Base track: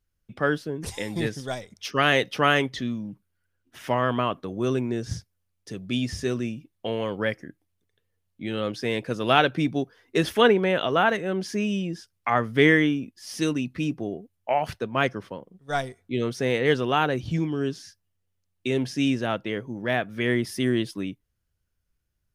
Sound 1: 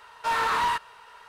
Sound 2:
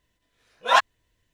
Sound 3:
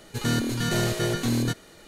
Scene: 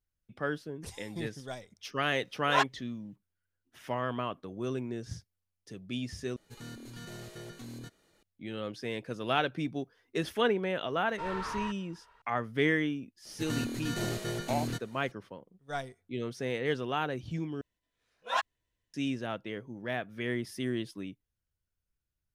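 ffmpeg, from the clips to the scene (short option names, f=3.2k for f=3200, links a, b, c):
-filter_complex "[2:a]asplit=2[a][b];[3:a]asplit=2[c][d];[0:a]volume=-9.5dB[e];[c]alimiter=limit=-17.5dB:level=0:latency=1:release=201[f];[1:a]aemphasis=mode=reproduction:type=bsi[g];[e]asplit=3[h][i][j];[h]atrim=end=6.364[k];[f]atrim=end=1.87,asetpts=PTS-STARTPTS,volume=-18dB[l];[i]atrim=start=8.226:end=17.614[m];[b]atrim=end=1.33,asetpts=PTS-STARTPTS,volume=-12.5dB[n];[j]atrim=start=18.936[o];[a]atrim=end=1.33,asetpts=PTS-STARTPTS,volume=-9dB,afade=t=in:d=0.004:c=hsin,afade=t=out:st=1.326:d=0.004:c=hsin,adelay=1830[p];[g]atrim=end=1.28,asetpts=PTS-STARTPTS,volume=-13dB,afade=t=in:d=0.004:c=hsin,afade=t=out:st=1.276:d=0.004:c=hsin,adelay=10940[q];[d]atrim=end=1.87,asetpts=PTS-STARTPTS,volume=-9.5dB,afade=t=in:d=0.004:c=hsin,afade=t=out:st=1.866:d=0.004:c=hsin,adelay=13250[r];[k][l]acrossfade=d=0.004:c1=hsin:c2=hsin[s];[s][m]acrossfade=d=0.004:c1=hsin:c2=hsin[t];[t][n]acrossfade=d=0.004:c1=hsin:c2=hsin[u];[u][o]acrossfade=d=0.004:c1=hsin:c2=hsin[v];[v][p][q][r]amix=inputs=4:normalize=0"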